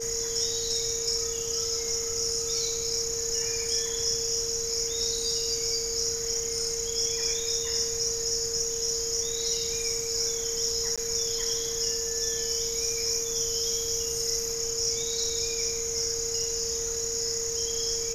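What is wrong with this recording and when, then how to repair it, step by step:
whistle 460 Hz −34 dBFS
0:10.96–0:10.98: drop-out 16 ms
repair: notch filter 460 Hz, Q 30
repair the gap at 0:10.96, 16 ms

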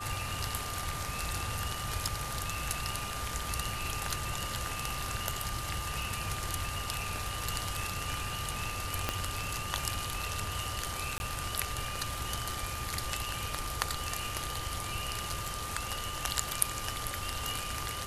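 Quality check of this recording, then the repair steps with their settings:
whistle 1,200 Hz −41 dBFS
0:09.09: click −13 dBFS
0:11.18–0:11.20: drop-out 21 ms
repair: click removal
notch filter 1,200 Hz, Q 30
repair the gap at 0:11.18, 21 ms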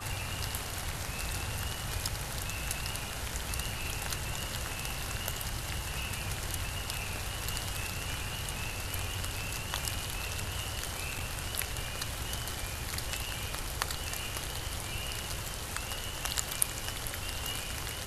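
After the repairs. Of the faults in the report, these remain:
0:09.09: click

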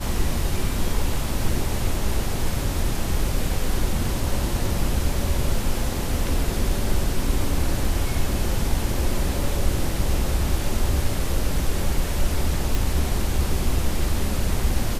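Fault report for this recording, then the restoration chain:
0:12.75: click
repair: click removal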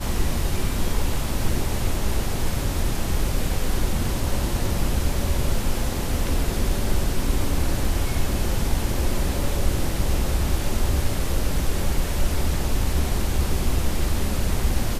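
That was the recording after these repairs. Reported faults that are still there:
none of them is left

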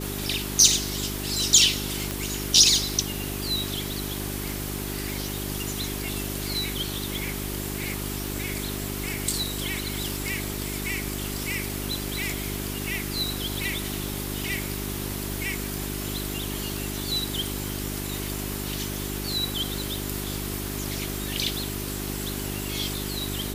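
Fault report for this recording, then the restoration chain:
surface crackle 24 per second −31 dBFS
mains hum 50 Hz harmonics 8 −33 dBFS
0:02.11: click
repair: click removal
hum removal 50 Hz, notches 8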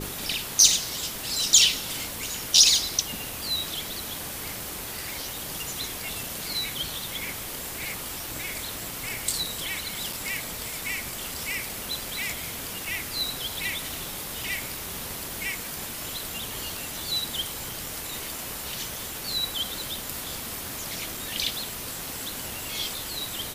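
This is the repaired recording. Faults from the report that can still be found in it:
none of them is left

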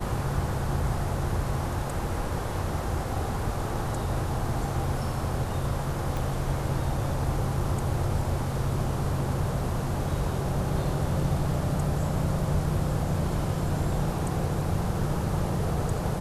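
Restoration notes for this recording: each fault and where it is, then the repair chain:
0:06.17: click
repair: click removal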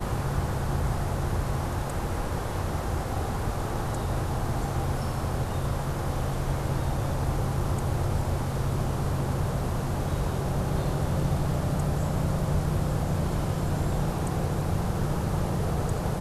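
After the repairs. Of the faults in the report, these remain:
0:06.17: click

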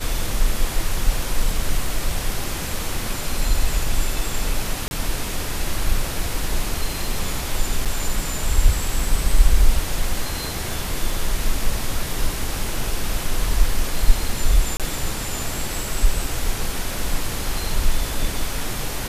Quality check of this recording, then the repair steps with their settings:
0:04.88–0:04.91: drop-out 31 ms
0:07.85–0:07.86: drop-out 6.6 ms
0:14.77–0:14.80: drop-out 27 ms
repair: repair the gap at 0:04.88, 31 ms
repair the gap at 0:07.85, 6.6 ms
repair the gap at 0:14.77, 27 ms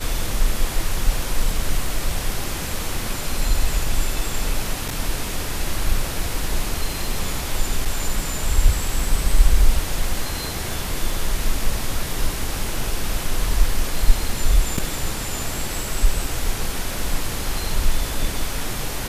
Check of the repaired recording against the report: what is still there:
none of them is left

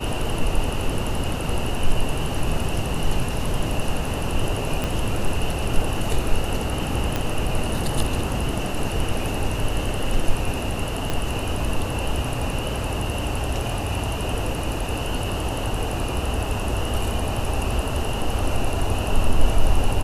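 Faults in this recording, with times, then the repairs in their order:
0:04.84: click −11 dBFS
0:07.16: click −9 dBFS
0:11.10: click −10 dBFS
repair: click removal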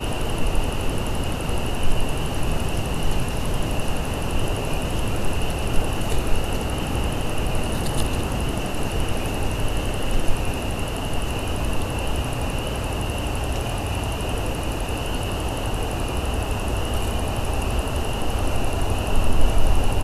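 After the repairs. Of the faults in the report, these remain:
0:04.84: click
0:11.10: click

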